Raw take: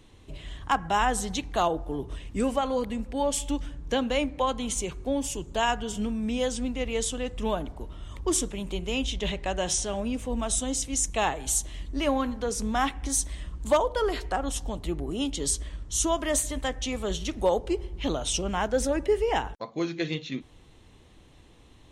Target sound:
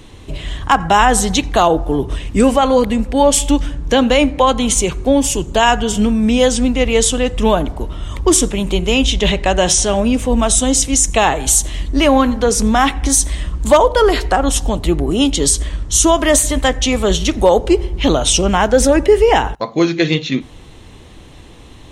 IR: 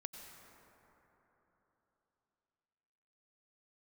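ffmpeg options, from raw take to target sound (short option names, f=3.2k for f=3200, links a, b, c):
-filter_complex "[0:a]asplit=2[a][b];[1:a]atrim=start_sample=2205,atrim=end_sample=3969[c];[b][c]afir=irnorm=-1:irlink=0,volume=0dB[d];[a][d]amix=inputs=2:normalize=0,alimiter=level_in=12.5dB:limit=-1dB:release=50:level=0:latency=1,volume=-1dB"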